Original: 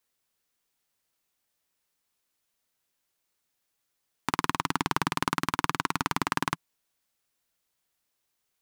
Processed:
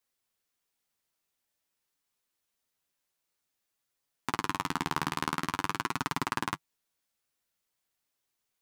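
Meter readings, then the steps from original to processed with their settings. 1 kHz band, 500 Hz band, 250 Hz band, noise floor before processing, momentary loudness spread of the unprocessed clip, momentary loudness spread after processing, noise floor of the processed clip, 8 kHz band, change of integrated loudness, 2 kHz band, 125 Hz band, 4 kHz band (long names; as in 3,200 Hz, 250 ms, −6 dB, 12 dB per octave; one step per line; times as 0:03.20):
−3.5 dB, −3.5 dB, −3.5 dB, −80 dBFS, 4 LU, 5 LU, −83 dBFS, −3.5 dB, −3.5 dB, −3.5 dB, −3.5 dB, −3.5 dB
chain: flanger 0.49 Hz, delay 6.9 ms, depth 7.1 ms, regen −25%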